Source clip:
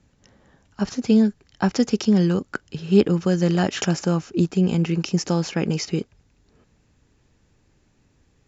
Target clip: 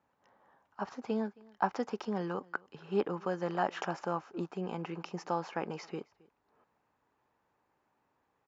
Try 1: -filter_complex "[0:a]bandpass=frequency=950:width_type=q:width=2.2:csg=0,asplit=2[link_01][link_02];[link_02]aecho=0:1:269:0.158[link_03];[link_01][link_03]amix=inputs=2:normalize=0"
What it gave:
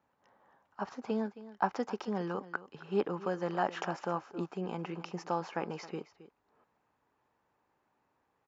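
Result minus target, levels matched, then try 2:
echo-to-direct +9 dB
-filter_complex "[0:a]bandpass=frequency=950:width_type=q:width=2.2:csg=0,asplit=2[link_01][link_02];[link_02]aecho=0:1:269:0.0562[link_03];[link_01][link_03]amix=inputs=2:normalize=0"

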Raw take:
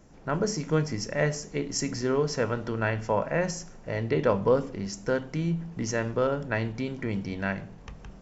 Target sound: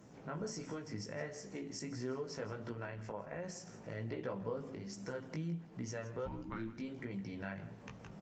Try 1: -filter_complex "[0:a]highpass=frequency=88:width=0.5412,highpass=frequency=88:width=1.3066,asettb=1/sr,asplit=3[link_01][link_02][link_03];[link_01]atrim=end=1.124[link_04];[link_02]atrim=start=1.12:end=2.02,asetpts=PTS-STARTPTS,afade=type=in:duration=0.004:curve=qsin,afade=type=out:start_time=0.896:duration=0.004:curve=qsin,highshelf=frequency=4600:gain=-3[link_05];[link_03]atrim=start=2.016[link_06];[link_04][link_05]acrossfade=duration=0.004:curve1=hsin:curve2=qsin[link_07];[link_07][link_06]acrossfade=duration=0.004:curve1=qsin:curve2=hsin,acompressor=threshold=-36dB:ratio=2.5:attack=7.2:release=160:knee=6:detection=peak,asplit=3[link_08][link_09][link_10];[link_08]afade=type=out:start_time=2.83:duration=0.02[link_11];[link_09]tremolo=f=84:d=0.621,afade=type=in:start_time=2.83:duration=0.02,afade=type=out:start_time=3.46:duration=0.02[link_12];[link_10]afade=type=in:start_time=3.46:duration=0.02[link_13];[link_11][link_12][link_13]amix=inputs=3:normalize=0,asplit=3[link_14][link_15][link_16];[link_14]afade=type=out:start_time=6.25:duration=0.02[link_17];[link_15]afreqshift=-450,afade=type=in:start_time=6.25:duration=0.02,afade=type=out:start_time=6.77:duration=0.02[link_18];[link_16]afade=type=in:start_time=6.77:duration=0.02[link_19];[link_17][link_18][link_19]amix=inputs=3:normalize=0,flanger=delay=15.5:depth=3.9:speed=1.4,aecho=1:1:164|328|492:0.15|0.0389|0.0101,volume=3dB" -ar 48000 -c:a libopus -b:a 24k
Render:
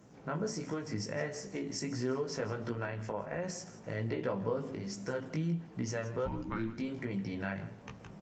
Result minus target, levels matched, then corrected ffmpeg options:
downward compressor: peak gain reduction −6.5 dB
-filter_complex "[0:a]highpass=frequency=88:width=0.5412,highpass=frequency=88:width=1.3066,asettb=1/sr,asplit=3[link_01][link_02][link_03];[link_01]atrim=end=1.124[link_04];[link_02]atrim=start=1.12:end=2.02,asetpts=PTS-STARTPTS,afade=type=in:duration=0.004:curve=qsin,afade=type=out:start_time=0.896:duration=0.004:curve=qsin,highshelf=frequency=4600:gain=-3[link_05];[link_03]atrim=start=2.016[link_06];[link_04][link_05]acrossfade=duration=0.004:curve1=hsin:curve2=qsin[link_07];[link_07][link_06]acrossfade=duration=0.004:curve1=qsin:curve2=hsin,acompressor=threshold=-46.5dB:ratio=2.5:attack=7.2:release=160:knee=6:detection=peak,asplit=3[link_08][link_09][link_10];[link_08]afade=type=out:start_time=2.83:duration=0.02[link_11];[link_09]tremolo=f=84:d=0.621,afade=type=in:start_time=2.83:duration=0.02,afade=type=out:start_time=3.46:duration=0.02[link_12];[link_10]afade=type=in:start_time=3.46:duration=0.02[link_13];[link_11][link_12][link_13]amix=inputs=3:normalize=0,asplit=3[link_14][link_15][link_16];[link_14]afade=type=out:start_time=6.25:duration=0.02[link_17];[link_15]afreqshift=-450,afade=type=in:start_time=6.25:duration=0.02,afade=type=out:start_time=6.77:duration=0.02[link_18];[link_16]afade=type=in:start_time=6.77:duration=0.02[link_19];[link_17][link_18][link_19]amix=inputs=3:normalize=0,flanger=delay=15.5:depth=3.9:speed=1.4,aecho=1:1:164|328|492:0.15|0.0389|0.0101,volume=3dB" -ar 48000 -c:a libopus -b:a 24k

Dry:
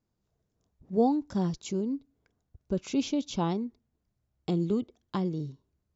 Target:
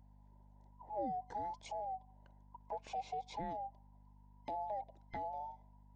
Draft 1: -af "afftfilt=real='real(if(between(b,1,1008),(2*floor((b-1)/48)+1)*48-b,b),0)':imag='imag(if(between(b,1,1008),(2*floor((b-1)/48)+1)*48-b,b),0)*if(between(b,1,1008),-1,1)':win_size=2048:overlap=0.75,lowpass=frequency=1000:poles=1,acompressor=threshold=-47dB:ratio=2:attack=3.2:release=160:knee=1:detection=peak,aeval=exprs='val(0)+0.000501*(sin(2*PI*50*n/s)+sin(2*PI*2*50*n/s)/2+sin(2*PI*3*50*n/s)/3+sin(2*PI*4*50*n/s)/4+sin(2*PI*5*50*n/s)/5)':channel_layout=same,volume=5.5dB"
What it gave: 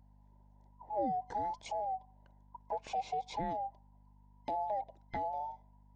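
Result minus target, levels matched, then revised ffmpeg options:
downward compressor: peak gain reduction −5 dB
-af "afftfilt=real='real(if(between(b,1,1008),(2*floor((b-1)/48)+1)*48-b,b),0)':imag='imag(if(between(b,1,1008),(2*floor((b-1)/48)+1)*48-b,b),0)*if(between(b,1,1008),-1,1)':win_size=2048:overlap=0.75,lowpass=frequency=1000:poles=1,acompressor=threshold=-57.5dB:ratio=2:attack=3.2:release=160:knee=1:detection=peak,aeval=exprs='val(0)+0.000501*(sin(2*PI*50*n/s)+sin(2*PI*2*50*n/s)/2+sin(2*PI*3*50*n/s)/3+sin(2*PI*4*50*n/s)/4+sin(2*PI*5*50*n/s)/5)':channel_layout=same,volume=5.5dB"

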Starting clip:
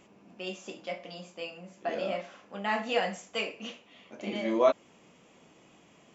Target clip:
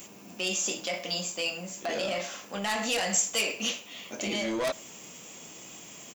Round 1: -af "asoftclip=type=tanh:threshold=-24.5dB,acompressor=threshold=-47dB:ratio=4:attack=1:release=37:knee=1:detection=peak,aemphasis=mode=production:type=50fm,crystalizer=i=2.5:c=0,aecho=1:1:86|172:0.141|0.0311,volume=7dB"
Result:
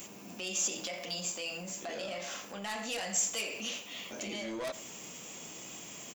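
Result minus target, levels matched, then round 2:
downward compressor: peak gain reduction +8 dB; echo-to-direct +9 dB
-af "asoftclip=type=tanh:threshold=-24.5dB,acompressor=threshold=-36dB:ratio=4:attack=1:release=37:knee=1:detection=peak,aemphasis=mode=production:type=50fm,crystalizer=i=2.5:c=0,aecho=1:1:86|172:0.0501|0.011,volume=7dB"

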